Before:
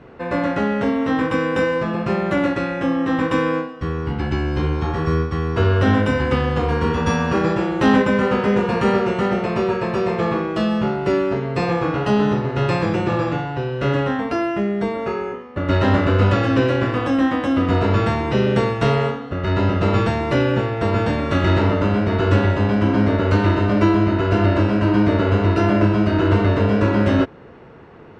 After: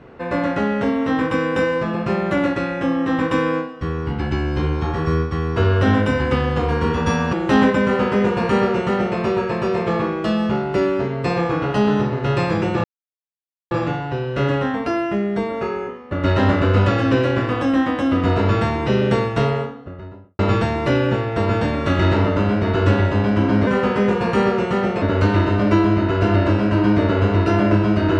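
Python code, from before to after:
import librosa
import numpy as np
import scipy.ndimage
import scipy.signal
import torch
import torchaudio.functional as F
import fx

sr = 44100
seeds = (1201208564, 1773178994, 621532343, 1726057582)

y = fx.studio_fade_out(x, sr, start_s=18.63, length_s=1.21)
y = fx.edit(y, sr, fx.cut(start_s=7.33, length_s=0.32),
    fx.duplicate(start_s=8.15, length_s=1.35, to_s=23.12),
    fx.insert_silence(at_s=13.16, length_s=0.87), tone=tone)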